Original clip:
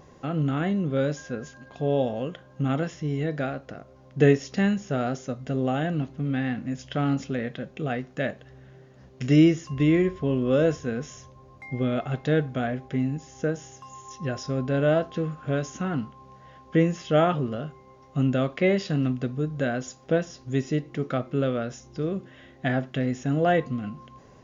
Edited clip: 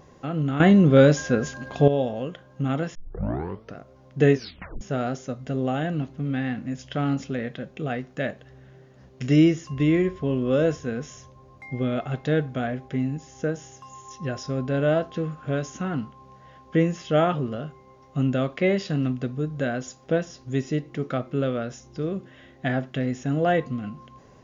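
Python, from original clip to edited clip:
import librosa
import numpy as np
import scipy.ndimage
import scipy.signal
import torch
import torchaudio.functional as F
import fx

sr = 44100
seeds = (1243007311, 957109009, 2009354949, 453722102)

y = fx.edit(x, sr, fx.clip_gain(start_s=0.6, length_s=1.28, db=10.5),
    fx.tape_start(start_s=2.95, length_s=0.81),
    fx.tape_stop(start_s=4.35, length_s=0.46), tone=tone)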